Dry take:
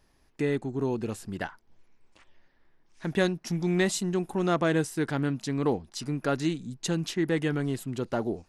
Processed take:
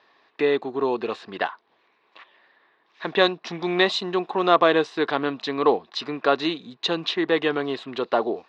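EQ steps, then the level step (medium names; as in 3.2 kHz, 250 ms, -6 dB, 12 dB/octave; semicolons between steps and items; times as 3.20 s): dynamic bell 1.8 kHz, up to -6 dB, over -48 dBFS, Q 1.8; cabinet simulation 400–4200 Hz, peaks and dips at 440 Hz +4 dB, 710 Hz +4 dB, 1.1 kHz +10 dB, 1.8 kHz +6 dB, 2.6 kHz +4 dB, 3.8 kHz +9 dB; +7.0 dB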